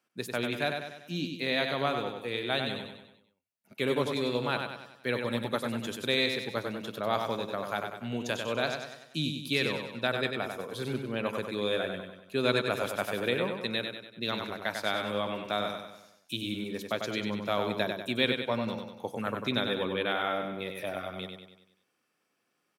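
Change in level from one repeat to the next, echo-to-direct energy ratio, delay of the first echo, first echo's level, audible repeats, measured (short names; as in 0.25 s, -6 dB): -6.0 dB, -4.5 dB, 96 ms, -5.5 dB, 5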